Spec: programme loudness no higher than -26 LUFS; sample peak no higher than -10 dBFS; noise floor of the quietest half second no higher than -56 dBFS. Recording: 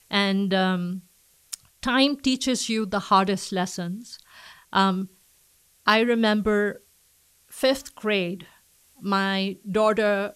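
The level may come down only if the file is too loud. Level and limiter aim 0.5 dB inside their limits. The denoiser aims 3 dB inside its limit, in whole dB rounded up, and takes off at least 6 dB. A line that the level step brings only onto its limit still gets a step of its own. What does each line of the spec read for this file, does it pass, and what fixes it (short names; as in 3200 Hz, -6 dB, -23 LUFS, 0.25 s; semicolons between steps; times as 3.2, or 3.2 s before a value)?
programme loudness -23.5 LUFS: fail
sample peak -5.0 dBFS: fail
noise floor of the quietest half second -61 dBFS: OK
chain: gain -3 dB; limiter -10.5 dBFS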